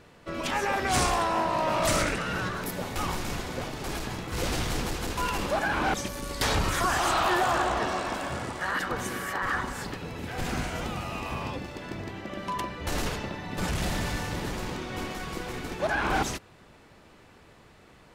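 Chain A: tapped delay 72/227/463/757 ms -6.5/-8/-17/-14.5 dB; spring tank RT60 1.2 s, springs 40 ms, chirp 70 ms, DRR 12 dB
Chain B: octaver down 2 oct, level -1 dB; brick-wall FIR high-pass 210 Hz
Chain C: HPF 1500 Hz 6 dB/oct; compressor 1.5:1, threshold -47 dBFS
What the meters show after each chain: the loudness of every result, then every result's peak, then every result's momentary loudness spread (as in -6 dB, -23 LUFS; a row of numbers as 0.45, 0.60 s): -28.0, -30.0, -39.5 LUFS; -12.0, -15.0, -23.5 dBFS; 10, 11, 11 LU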